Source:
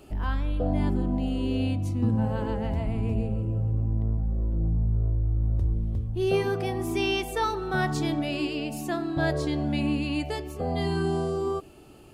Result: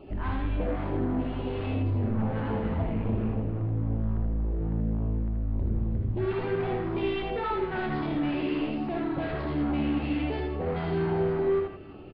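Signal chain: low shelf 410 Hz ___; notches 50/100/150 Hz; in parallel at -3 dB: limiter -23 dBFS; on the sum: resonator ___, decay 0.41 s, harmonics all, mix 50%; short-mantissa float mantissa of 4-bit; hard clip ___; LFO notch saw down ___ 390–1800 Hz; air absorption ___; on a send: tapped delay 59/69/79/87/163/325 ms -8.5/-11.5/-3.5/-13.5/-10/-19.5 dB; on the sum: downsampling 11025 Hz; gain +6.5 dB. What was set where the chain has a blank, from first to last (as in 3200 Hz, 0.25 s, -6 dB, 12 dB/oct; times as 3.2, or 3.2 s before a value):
-2.5 dB, 93 Hz, -33.5 dBFS, 3.6 Hz, 500 m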